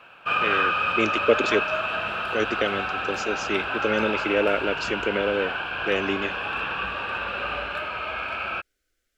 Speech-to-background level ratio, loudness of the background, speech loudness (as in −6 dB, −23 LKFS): −0.5 dB, −26.5 LKFS, −27.0 LKFS